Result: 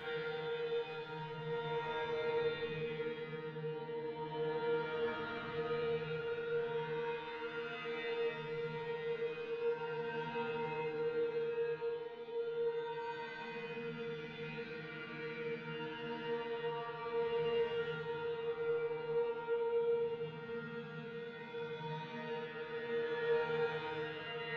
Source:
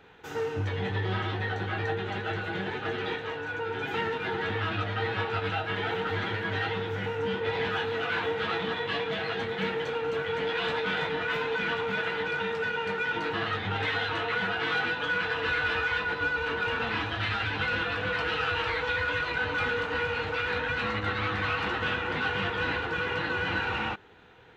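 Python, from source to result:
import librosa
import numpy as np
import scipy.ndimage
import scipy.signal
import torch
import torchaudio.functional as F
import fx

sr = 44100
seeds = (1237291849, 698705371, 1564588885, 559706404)

y = scipy.signal.sosfilt(scipy.signal.butter(4, 6200.0, 'lowpass', fs=sr, output='sos'), x)
y = fx.low_shelf(y, sr, hz=290.0, db=11.0)
y = fx.over_compress(y, sr, threshold_db=-32.0, ratio=-0.5)
y = fx.paulstretch(y, sr, seeds[0], factor=22.0, window_s=0.05, from_s=10.97)
y = fx.resonator_bank(y, sr, root=51, chord='fifth', decay_s=0.5)
y = F.gain(torch.from_numpy(y), 6.5).numpy()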